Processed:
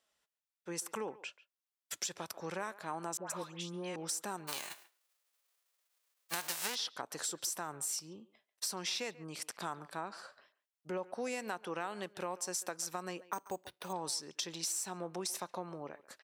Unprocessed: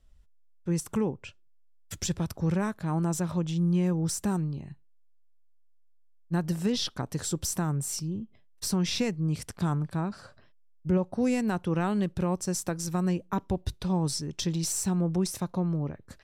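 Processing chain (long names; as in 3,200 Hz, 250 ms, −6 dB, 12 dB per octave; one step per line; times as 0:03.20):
0:04.47–0:06.74: spectral envelope flattened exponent 0.3
high-pass filter 610 Hz 12 dB per octave
downward compressor, threshold −34 dBFS, peak gain reduction 8.5 dB
0:03.17–0:03.96: all-pass dispersion highs, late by 130 ms, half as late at 1,500 Hz
far-end echo of a speakerphone 140 ms, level −18 dB
0:13.33–0:13.93: bad sample-rate conversion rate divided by 6×, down filtered, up hold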